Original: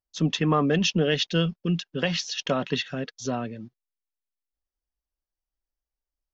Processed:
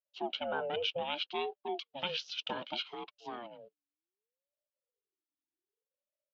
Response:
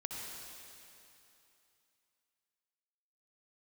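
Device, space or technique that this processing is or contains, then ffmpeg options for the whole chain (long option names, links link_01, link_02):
voice changer toy: -filter_complex "[0:a]aeval=exprs='val(0)*sin(2*PI*440*n/s+440*0.35/0.65*sin(2*PI*0.65*n/s))':channel_layout=same,highpass=400,equalizer=frequency=440:width_type=q:width=4:gain=4,equalizer=frequency=730:width_type=q:width=4:gain=-3,equalizer=frequency=1100:width_type=q:width=4:gain=-5,equalizer=frequency=2000:width_type=q:width=4:gain=-9,equalizer=frequency=2900:width_type=q:width=4:gain=6,lowpass=frequency=3600:width=0.5412,lowpass=frequency=3600:width=1.3066,asettb=1/sr,asplit=3[link_01][link_02][link_03];[link_01]atrim=end=1.784[link_04];[link_02]atrim=start=1.78:end=3.04,asetpts=PTS-STARTPTS,afade=type=in:duration=0.004:curve=qsin,afade=type=out:start_time=1.256:duration=0.004:curve=qsin,bass=frequency=250:gain=4,treble=frequency=4000:gain=11[link_05];[link_03]atrim=start=3.036[link_06];[link_04][link_05]acrossfade=duration=0.004:curve1=hsin:curve2=qsin[link_07];[link_07][link_06]acrossfade=duration=0.004:curve1=qsin:curve2=hsin,volume=-7dB"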